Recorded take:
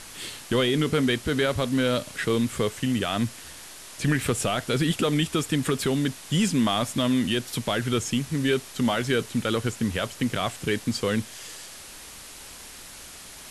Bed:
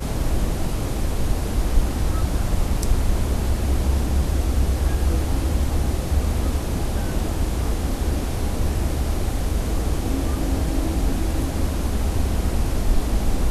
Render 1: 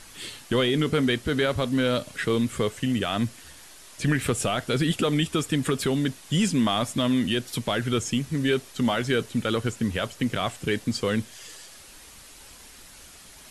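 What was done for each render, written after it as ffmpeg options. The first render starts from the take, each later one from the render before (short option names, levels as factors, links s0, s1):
-af "afftdn=nr=6:nf=-43"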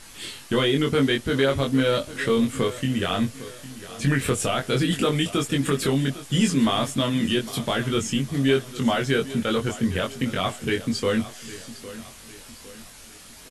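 -filter_complex "[0:a]asplit=2[s0][s1];[s1]adelay=22,volume=0.708[s2];[s0][s2]amix=inputs=2:normalize=0,aecho=1:1:807|1614|2421|3228:0.158|0.0697|0.0307|0.0135"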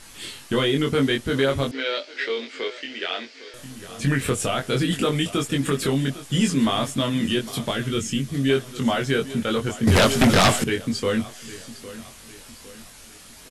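-filter_complex "[0:a]asettb=1/sr,asplit=3[s0][s1][s2];[s0]atrim=end=1.714[s3];[s1]atrim=start=1.71:end=3.54,asetpts=PTS-STARTPTS,afade=t=in:d=0.004:c=qsin,afade=t=out:st=1.826:d=0.004:c=qsin,highpass=f=390:w=0.5412,highpass=f=390:w=1.3066,equalizer=f=520:t=q:w=4:g=-6,equalizer=f=740:t=q:w=4:g=-4,equalizer=f=1100:t=q:w=4:g=-10,equalizer=f=2200:t=q:w=4:g=5,equalizer=f=4700:t=q:w=4:g=6,lowpass=f=5300:w=0.5412,lowpass=f=5300:w=1.3066[s4];[s2]atrim=start=3.536[s5];[s3][s4]acrossfade=d=0.004:c1=hsin:c2=qsin[s6];[s6][s5]acrossfade=d=0.004:c1=qsin:c2=hsin,asettb=1/sr,asplit=3[s7][s8][s9];[s7]atrim=end=7.714[s10];[s8]atrim=start=7.71:end=8.5,asetpts=PTS-STARTPTS,afade=t=in:d=0.004:c=qsin,afade=t=out:st=0.786:d=0.004:c=qsin,equalizer=f=860:w=1.1:g=-7[s11];[s9]atrim=start=8.496[s12];[s10][s11]acrossfade=d=0.004:c1=hsin:c2=qsin[s13];[s13][s12]acrossfade=d=0.004:c1=qsin:c2=hsin,asettb=1/sr,asplit=3[s14][s15][s16];[s14]atrim=end=9.874[s17];[s15]atrim=start=9.87:end=10.64,asetpts=PTS-STARTPTS,afade=t=in:d=0.004:c=qsin,afade=t=out:st=0.766:d=0.004:c=qsin,aeval=exprs='0.282*sin(PI/2*3.55*val(0)/0.282)':c=same[s18];[s16]atrim=start=10.636[s19];[s17][s18]acrossfade=d=0.004:c1=hsin:c2=qsin[s20];[s20][s19]acrossfade=d=0.004:c1=qsin:c2=hsin"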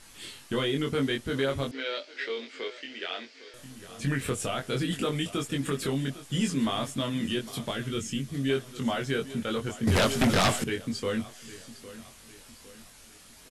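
-af "volume=0.447"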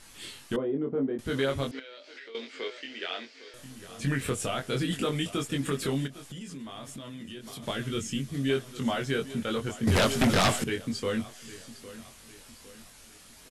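-filter_complex "[0:a]asettb=1/sr,asplit=3[s0][s1][s2];[s0]atrim=end=0.564[s3];[s1]atrim=start=0.56:end=1.19,asetpts=PTS-STARTPTS,afade=t=in:d=0.004:c=qsin,afade=t=out:st=0.626:d=0.004:c=qsin,asuperpass=centerf=380:order=4:qfactor=0.65[s4];[s2]atrim=start=1.186[s5];[s3][s4]acrossfade=d=0.004:c1=hsin:c2=qsin[s6];[s6][s5]acrossfade=d=0.004:c1=qsin:c2=hsin,asettb=1/sr,asplit=3[s7][s8][s9];[s7]atrim=end=1.794[s10];[s8]atrim=start=1.79:end=2.35,asetpts=PTS-STARTPTS,afade=t=in:d=0.004:c=qsin,afade=t=out:st=0.556:d=0.004:c=qsin,acompressor=threshold=0.00794:ratio=16:attack=3.2:release=140:knee=1:detection=peak[s11];[s9]atrim=start=2.346[s12];[s10][s11]acrossfade=d=0.004:c1=hsin:c2=qsin[s13];[s13][s12]acrossfade=d=0.004:c1=qsin:c2=hsin,asplit=3[s14][s15][s16];[s14]afade=t=out:st=6.06:d=0.02[s17];[s15]acompressor=threshold=0.0126:ratio=8:attack=3.2:release=140:knee=1:detection=peak,afade=t=in:st=6.06:d=0.02,afade=t=out:st=7.62:d=0.02[s18];[s16]afade=t=in:st=7.62:d=0.02[s19];[s17][s18][s19]amix=inputs=3:normalize=0"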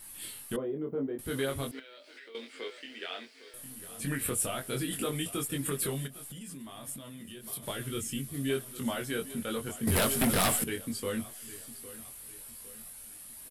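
-af "flanger=delay=1:depth=3.6:regen=-76:speed=0.15:shape=triangular,aexciter=amount=6.6:drive=6.4:freq=8900"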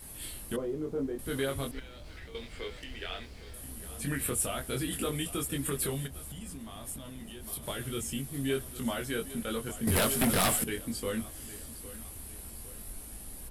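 -filter_complex "[1:a]volume=0.0447[s0];[0:a][s0]amix=inputs=2:normalize=0"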